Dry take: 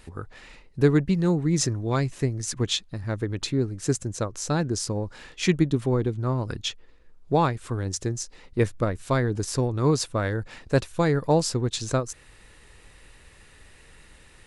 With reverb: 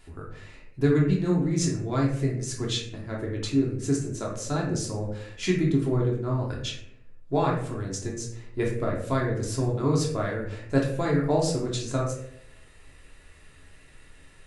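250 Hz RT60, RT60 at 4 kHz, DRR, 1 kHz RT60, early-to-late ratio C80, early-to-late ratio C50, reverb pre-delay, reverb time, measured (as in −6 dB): 0.90 s, 0.40 s, −3.5 dB, 0.60 s, 8.5 dB, 5.0 dB, 3 ms, 0.75 s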